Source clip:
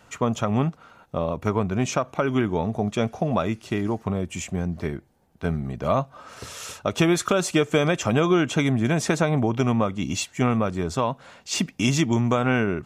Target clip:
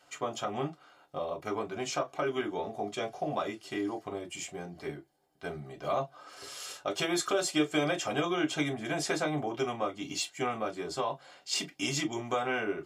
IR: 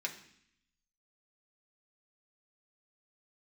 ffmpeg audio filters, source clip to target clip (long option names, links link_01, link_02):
-filter_complex "[1:a]atrim=start_sample=2205,atrim=end_sample=4410,asetrate=88200,aresample=44100[link_01];[0:a][link_01]afir=irnorm=-1:irlink=0"